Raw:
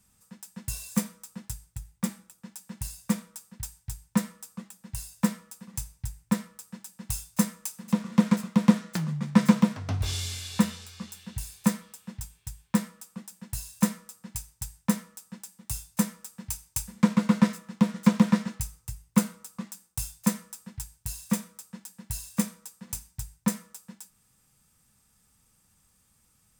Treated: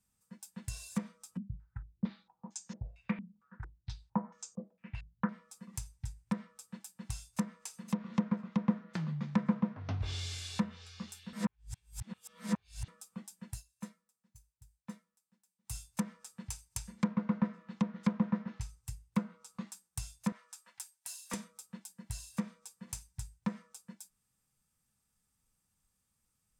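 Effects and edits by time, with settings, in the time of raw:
1.37–5.29 s: step-sequenced low-pass 4.4 Hz 200–6600 Hz
11.33–12.88 s: reverse
13.50–15.76 s: dip -16.5 dB, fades 0.13 s
20.32–21.34 s: high-pass 630 Hz
whole clip: spectral noise reduction 10 dB; low-pass that closes with the level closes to 1.5 kHz, closed at -20 dBFS; compression 1.5:1, threshold -33 dBFS; trim -4 dB

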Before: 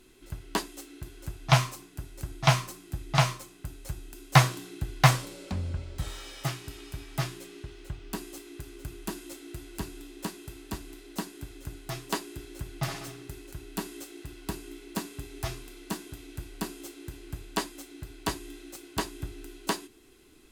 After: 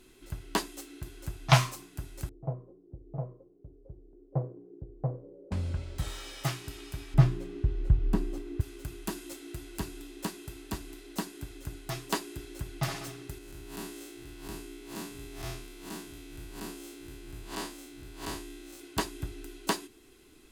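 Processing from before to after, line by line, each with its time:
2.29–5.52 s: four-pole ladder low-pass 520 Hz, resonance 70%
7.14–8.61 s: tilt EQ -4 dB/octave
13.38–18.80 s: spectral blur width 119 ms

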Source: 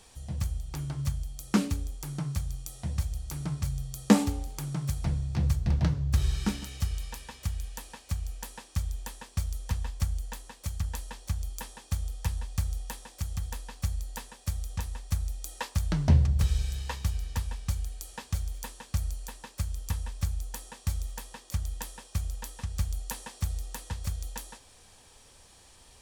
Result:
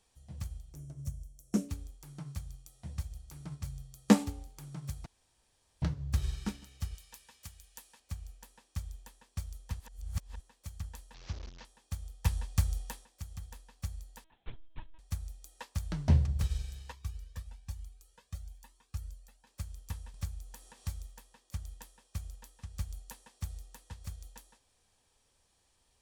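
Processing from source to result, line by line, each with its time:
0.73–1.69 s: time-frequency box 720–5300 Hz -12 dB
5.06–5.82 s: room tone
6.95–8.00 s: tilt EQ +2 dB/octave
9.80–10.40 s: reverse
11.14–11.65 s: one-bit delta coder 32 kbps, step -31 dBFS
12.25–13.05 s: gain +6 dB
14.24–14.99 s: LPC vocoder at 8 kHz pitch kept
16.92–19.47 s: Shepard-style flanger rising 1.1 Hz
20.14–21.06 s: upward compressor, threshold -31 dBFS
whole clip: upward expansion 1.5:1, over -43 dBFS; trim -2 dB

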